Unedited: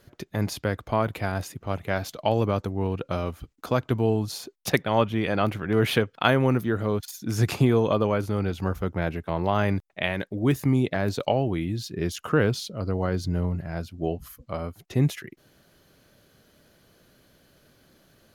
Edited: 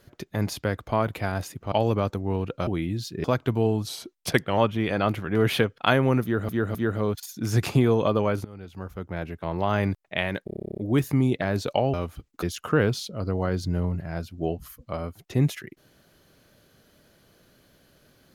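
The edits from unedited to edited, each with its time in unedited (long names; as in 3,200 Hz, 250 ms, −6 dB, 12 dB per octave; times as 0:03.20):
0:01.72–0:02.23: remove
0:03.18–0:03.67: swap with 0:11.46–0:12.03
0:04.30–0:04.95: play speed 92%
0:06.60–0:06.86: repeat, 3 plays
0:08.30–0:09.72: fade in, from −20.5 dB
0:10.30: stutter 0.03 s, 12 plays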